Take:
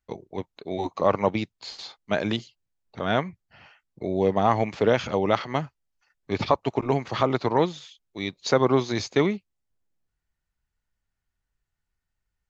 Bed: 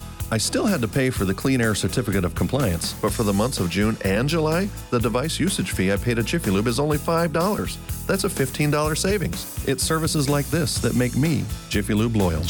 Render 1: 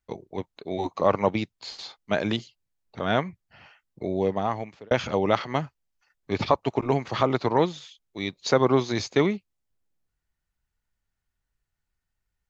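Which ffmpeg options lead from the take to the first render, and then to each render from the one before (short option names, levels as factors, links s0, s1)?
-filter_complex "[0:a]asplit=2[s0][s1];[s0]atrim=end=4.91,asetpts=PTS-STARTPTS,afade=t=out:st=4.03:d=0.88[s2];[s1]atrim=start=4.91,asetpts=PTS-STARTPTS,afade=t=in:d=0.004:c=hsin[s3];[s2][s3]concat=n=2:v=0:a=1"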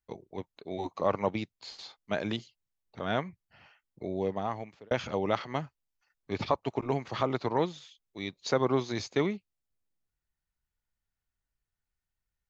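-af "volume=0.473"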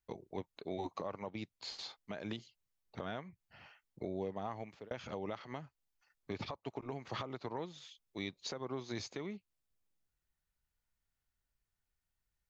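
-af "acompressor=threshold=0.0141:ratio=3,alimiter=level_in=1.68:limit=0.0631:level=0:latency=1:release=224,volume=0.596"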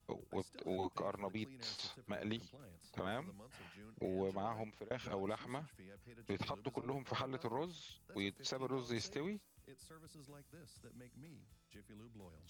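-filter_complex "[1:a]volume=0.0141[s0];[0:a][s0]amix=inputs=2:normalize=0"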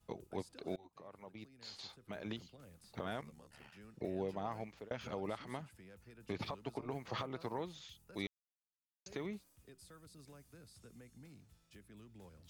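-filter_complex "[0:a]asplit=3[s0][s1][s2];[s0]afade=t=out:st=3.21:d=0.02[s3];[s1]aeval=exprs='val(0)*sin(2*PI*36*n/s)':c=same,afade=t=in:st=3.21:d=0.02,afade=t=out:st=3.71:d=0.02[s4];[s2]afade=t=in:st=3.71:d=0.02[s5];[s3][s4][s5]amix=inputs=3:normalize=0,asplit=4[s6][s7][s8][s9];[s6]atrim=end=0.76,asetpts=PTS-STARTPTS,afade=t=out:st=0.756:d=0.004:c=hsin:silence=0.0668344[s10];[s7]atrim=start=0.76:end=8.27,asetpts=PTS-STARTPTS,afade=t=in:d=1.9:silence=0.0668344,afade=t=out:st=7.506:d=0.004:c=hsin[s11];[s8]atrim=start=8.27:end=9.06,asetpts=PTS-STARTPTS,volume=0[s12];[s9]atrim=start=9.06,asetpts=PTS-STARTPTS,afade=t=in:d=0.004:c=hsin[s13];[s10][s11][s12][s13]concat=n=4:v=0:a=1"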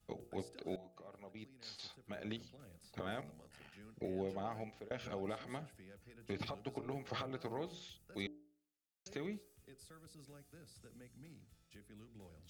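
-af "bandreject=f=1000:w=5.3,bandreject=f=59.57:t=h:w=4,bandreject=f=119.14:t=h:w=4,bandreject=f=178.71:t=h:w=4,bandreject=f=238.28:t=h:w=4,bandreject=f=297.85:t=h:w=4,bandreject=f=357.42:t=h:w=4,bandreject=f=416.99:t=h:w=4,bandreject=f=476.56:t=h:w=4,bandreject=f=536.13:t=h:w=4,bandreject=f=595.7:t=h:w=4,bandreject=f=655.27:t=h:w=4,bandreject=f=714.84:t=h:w=4,bandreject=f=774.41:t=h:w=4,bandreject=f=833.98:t=h:w=4"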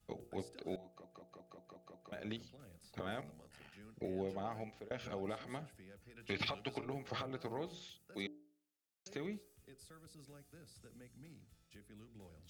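-filter_complex "[0:a]asettb=1/sr,asplit=3[s0][s1][s2];[s0]atrim=end=6.164[s3];[s1]atrim=start=6.16:end=6.85,asetpts=PTS-STARTPTS,afade=t=in:d=0.004:c=qsin,afade=t=out:st=0.686:d=0.004:c=qsin,equalizer=f=2700:t=o:w=2.1:g=11[s4];[s2]atrim=start=6.846[s5];[s3][s4]acrossfade=d=0.004:c1=hsin:c2=qsin[s6];[s6][s5]acrossfade=d=0.004:c1=qsin:c2=hsin,asettb=1/sr,asplit=3[s7][s8][s9];[s7]atrim=end=7.874[s10];[s8]atrim=start=7.87:end=9.14,asetpts=PTS-STARTPTS,afade=t=in:d=0.004:c=qsin,afade=t=out:st=1.266:d=0.004:c=qsin,highpass=140[s11];[s9]atrim=start=9.136[s12];[s10][s11]acrossfade=d=0.004:c1=hsin:c2=qsin[s13];[s13][s12]acrossfade=d=0.004:c1=qsin:c2=hsin,asplit=8[s14][s15][s16][s17][s18][s19][s20][s21];[s14]atrim=end=1.042[s22];[s15]atrim=start=0.858:end=1.042[s23];[s16]atrim=start=0.858:end=1.042[s24];[s17]atrim=start=0.858:end=1.042[s25];[s18]atrim=start=0.858:end=1.042[s26];[s19]atrim=start=0.858:end=1.042[s27];[s20]atrim=start=0.858:end=1.042[s28];[s21]atrim=start=2.118[s29];[s22][s23]acrossfade=d=0.004:c1=hsin:c2=hsin[s30];[s30][s24]acrossfade=d=0.004:c1=hsin:c2=hsin[s31];[s31][s25]acrossfade=d=0.004:c1=hsin:c2=hsin[s32];[s32][s26]acrossfade=d=0.004:c1=hsin:c2=hsin[s33];[s33][s27]acrossfade=d=0.004:c1=hsin:c2=hsin[s34];[s34][s28]acrossfade=d=0.004:c1=hsin:c2=hsin[s35];[s35][s29]acrossfade=d=0.004:c1=hsin:c2=hsin"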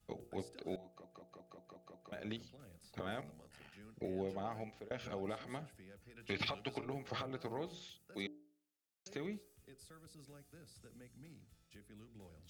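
-af anull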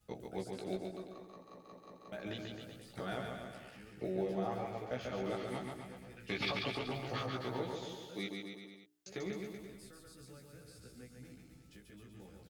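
-filter_complex "[0:a]asplit=2[s0][s1];[s1]adelay=16,volume=0.708[s2];[s0][s2]amix=inputs=2:normalize=0,aecho=1:1:140|266|379.4|481.5|573.3:0.631|0.398|0.251|0.158|0.1"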